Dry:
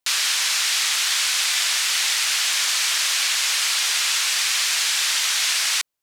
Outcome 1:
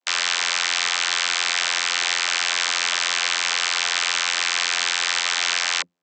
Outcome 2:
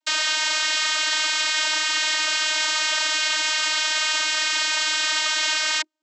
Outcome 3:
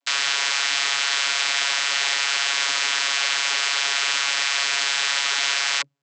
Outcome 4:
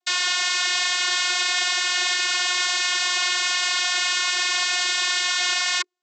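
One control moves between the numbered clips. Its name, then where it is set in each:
channel vocoder, frequency: 87, 310, 140, 360 Hertz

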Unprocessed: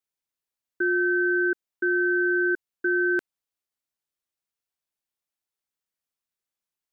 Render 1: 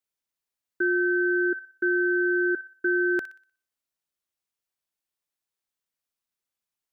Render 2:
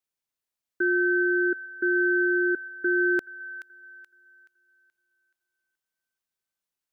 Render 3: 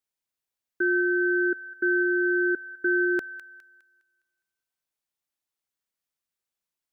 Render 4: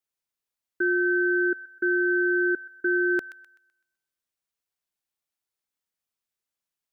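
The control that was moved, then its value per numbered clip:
delay with a high-pass on its return, delay time: 61, 427, 205, 127 milliseconds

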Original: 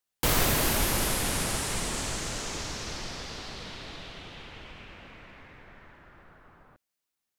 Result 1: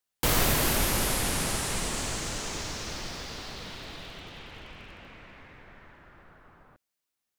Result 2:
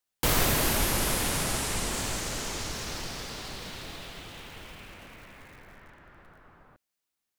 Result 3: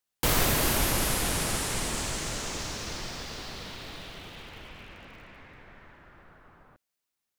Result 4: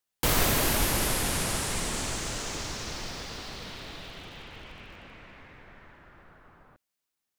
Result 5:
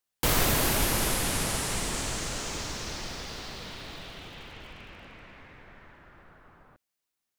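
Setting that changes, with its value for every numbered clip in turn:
feedback echo at a low word length, delay time: 97, 841, 394, 146, 238 milliseconds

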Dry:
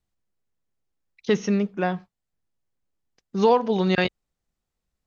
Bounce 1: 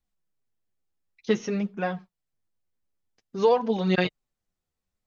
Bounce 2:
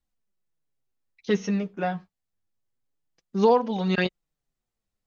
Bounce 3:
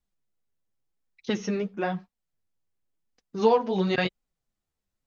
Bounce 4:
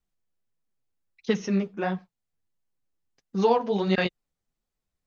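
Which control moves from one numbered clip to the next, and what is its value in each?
flanger, speed: 0.53, 0.27, 0.95, 1.5 Hertz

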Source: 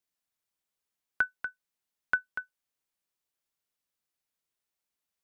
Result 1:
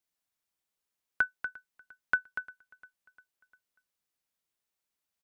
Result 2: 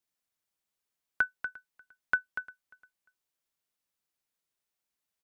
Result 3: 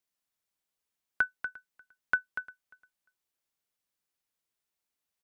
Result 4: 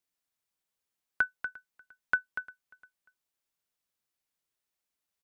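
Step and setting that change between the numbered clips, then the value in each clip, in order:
repeating echo, feedback: 55, 25, 16, 37%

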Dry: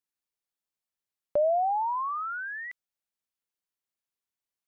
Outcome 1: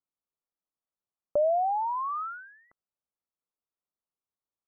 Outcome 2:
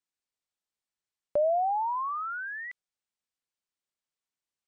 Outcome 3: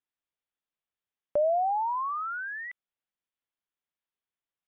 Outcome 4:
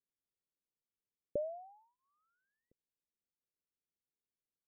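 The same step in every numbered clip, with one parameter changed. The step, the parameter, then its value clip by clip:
elliptic low-pass filter, frequency: 1,300, 8,900, 3,500, 500 Hertz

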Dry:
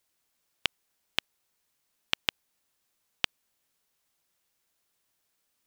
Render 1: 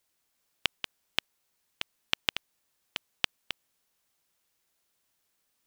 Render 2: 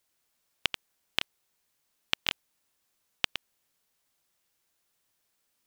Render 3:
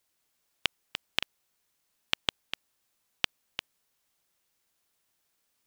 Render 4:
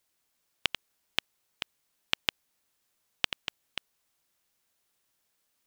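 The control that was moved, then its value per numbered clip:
delay that plays each chunk backwards, delay time: 375, 100, 201, 702 milliseconds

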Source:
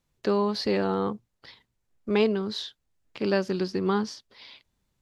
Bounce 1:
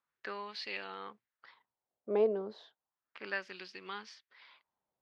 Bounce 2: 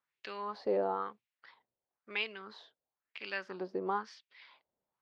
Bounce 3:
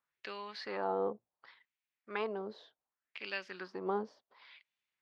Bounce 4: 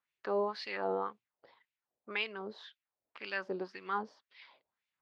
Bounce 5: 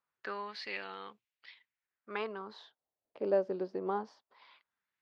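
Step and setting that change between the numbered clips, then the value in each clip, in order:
LFO wah, speed: 0.33, 1, 0.68, 1.9, 0.22 Hertz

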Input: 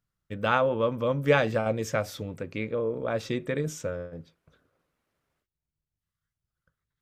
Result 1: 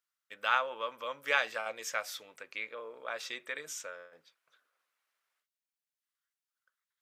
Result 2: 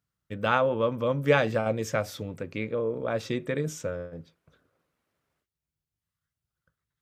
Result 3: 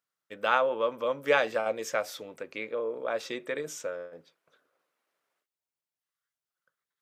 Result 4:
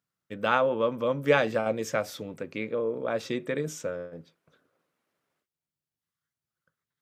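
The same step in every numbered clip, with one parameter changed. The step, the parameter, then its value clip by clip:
high-pass filter, corner frequency: 1,200, 56, 470, 180 Hertz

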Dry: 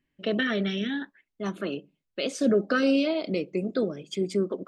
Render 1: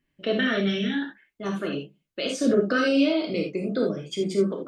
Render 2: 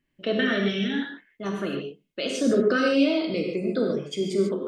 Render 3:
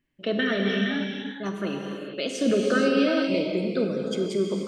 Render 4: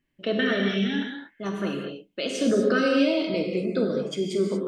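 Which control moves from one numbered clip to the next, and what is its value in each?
reverb whose tail is shaped and stops, gate: 100, 170, 500, 260 milliseconds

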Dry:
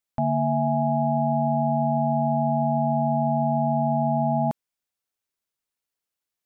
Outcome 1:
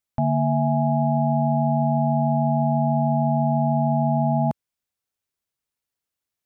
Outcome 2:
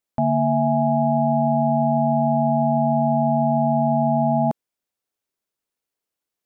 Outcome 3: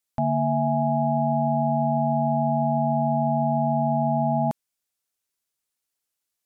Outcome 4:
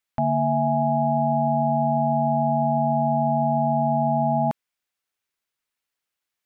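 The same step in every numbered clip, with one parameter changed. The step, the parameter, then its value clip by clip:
parametric band, centre frequency: 87, 380, 9,600, 2,000 Hertz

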